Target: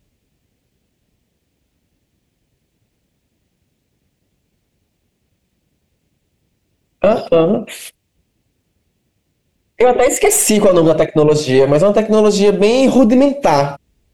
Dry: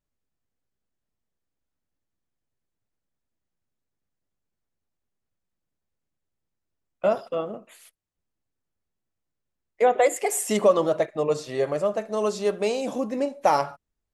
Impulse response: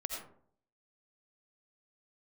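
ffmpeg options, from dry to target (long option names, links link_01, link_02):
-filter_complex "[0:a]highpass=41,tiltshelf=frequency=1100:gain=9.5,asplit=2[link_01][link_02];[link_02]acompressor=threshold=-29dB:ratio=6,volume=3dB[link_03];[link_01][link_03]amix=inputs=2:normalize=0,highshelf=frequency=1800:width_type=q:width=1.5:gain=10.5,aeval=exprs='0.841*(cos(1*acos(clip(val(0)/0.841,-1,1)))-cos(1*PI/2))+0.075*(cos(4*acos(clip(val(0)/0.841,-1,1)))-cos(4*PI/2))':channel_layout=same,alimiter=level_in=11dB:limit=-1dB:release=50:level=0:latency=1,volume=-1dB"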